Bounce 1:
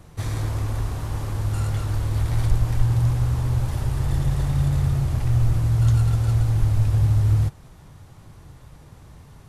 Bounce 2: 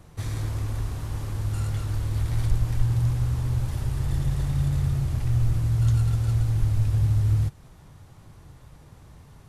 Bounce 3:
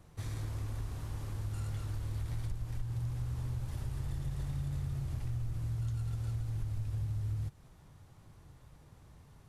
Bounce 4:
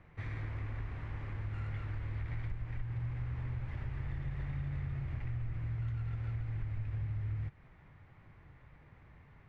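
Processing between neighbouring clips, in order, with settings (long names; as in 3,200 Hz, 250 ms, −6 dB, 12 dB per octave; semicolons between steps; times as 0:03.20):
dynamic equaliser 770 Hz, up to −4 dB, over −41 dBFS, Q 0.72; level −3 dB
downward compressor 5 to 1, threshold −24 dBFS, peak gain reduction 9.5 dB; level −8.5 dB
low-pass with resonance 2,100 Hz, resonance Q 3.4; level −1.5 dB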